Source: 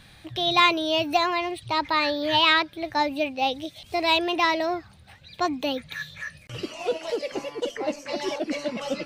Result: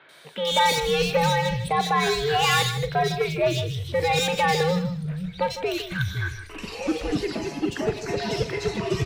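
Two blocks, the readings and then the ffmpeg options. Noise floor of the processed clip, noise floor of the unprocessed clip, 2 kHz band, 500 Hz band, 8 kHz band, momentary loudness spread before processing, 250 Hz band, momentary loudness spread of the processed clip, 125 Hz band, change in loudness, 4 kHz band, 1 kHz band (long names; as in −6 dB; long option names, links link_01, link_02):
−41 dBFS, −51 dBFS, −0.5 dB, +3.0 dB, +9.5 dB, 15 LU, +0.5 dB, 9 LU, +17.0 dB, +0.5 dB, −1.5 dB, +0.5 dB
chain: -filter_complex "[0:a]asoftclip=type=hard:threshold=-20dB,asplit=2[link_01][link_02];[link_02]adelay=40,volume=-13.5dB[link_03];[link_01][link_03]amix=inputs=2:normalize=0,asplit=2[link_04][link_05];[link_05]aecho=0:1:156:0.266[link_06];[link_04][link_06]amix=inputs=2:normalize=0,afreqshift=-170,acrossover=split=220|2700[link_07][link_08][link_09];[link_09]adelay=90[link_10];[link_07]adelay=510[link_11];[link_11][link_08][link_10]amix=inputs=3:normalize=0,volume=4dB"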